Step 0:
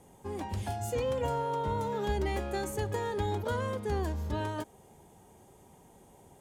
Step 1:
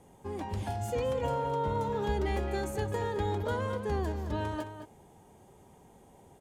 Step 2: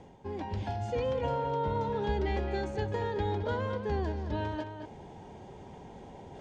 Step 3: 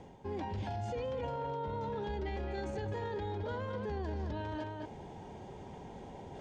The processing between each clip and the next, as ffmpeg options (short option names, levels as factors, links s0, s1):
-filter_complex "[0:a]highshelf=f=5500:g=-5.5,asplit=2[s0][s1];[s1]adelay=215.7,volume=0.355,highshelf=f=4000:g=-4.85[s2];[s0][s2]amix=inputs=2:normalize=0"
-af "lowpass=f=5400:w=0.5412,lowpass=f=5400:w=1.3066,bandreject=f=1200:w=8.2,areverse,acompressor=mode=upward:threshold=0.0141:ratio=2.5,areverse"
-af "alimiter=level_in=2.24:limit=0.0631:level=0:latency=1:release=14,volume=0.447"